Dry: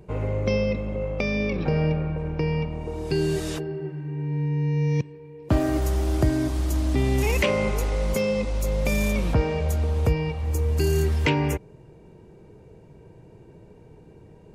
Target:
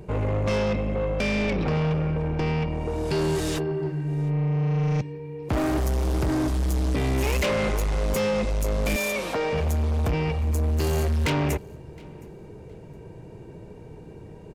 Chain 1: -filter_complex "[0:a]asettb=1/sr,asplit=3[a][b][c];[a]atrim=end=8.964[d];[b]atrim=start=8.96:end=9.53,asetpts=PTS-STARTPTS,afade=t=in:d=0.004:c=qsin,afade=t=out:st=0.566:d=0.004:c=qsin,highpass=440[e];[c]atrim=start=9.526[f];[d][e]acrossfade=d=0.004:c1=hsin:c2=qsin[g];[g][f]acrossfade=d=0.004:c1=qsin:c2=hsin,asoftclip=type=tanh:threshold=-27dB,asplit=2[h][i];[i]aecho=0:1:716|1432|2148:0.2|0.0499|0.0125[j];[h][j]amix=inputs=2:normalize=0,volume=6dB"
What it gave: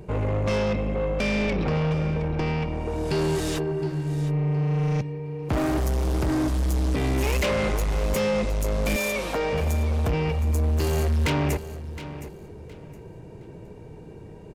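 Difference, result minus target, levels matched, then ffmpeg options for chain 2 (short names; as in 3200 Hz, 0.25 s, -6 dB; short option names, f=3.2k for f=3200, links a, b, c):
echo-to-direct +12 dB
-filter_complex "[0:a]asettb=1/sr,asplit=3[a][b][c];[a]atrim=end=8.964[d];[b]atrim=start=8.96:end=9.53,asetpts=PTS-STARTPTS,afade=t=in:d=0.004:c=qsin,afade=t=out:st=0.566:d=0.004:c=qsin,highpass=440[e];[c]atrim=start=9.526[f];[d][e]acrossfade=d=0.004:c1=hsin:c2=qsin[g];[g][f]acrossfade=d=0.004:c1=qsin:c2=hsin,asoftclip=type=tanh:threshold=-27dB,asplit=2[h][i];[i]aecho=0:1:716|1432:0.0501|0.0125[j];[h][j]amix=inputs=2:normalize=0,volume=6dB"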